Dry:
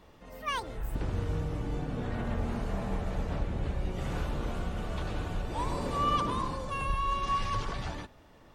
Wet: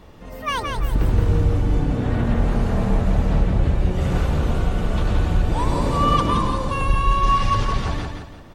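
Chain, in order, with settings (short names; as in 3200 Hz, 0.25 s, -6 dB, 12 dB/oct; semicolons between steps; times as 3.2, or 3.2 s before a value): low shelf 290 Hz +5.5 dB; feedback echo 0.171 s, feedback 36%, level -5 dB; gain +8 dB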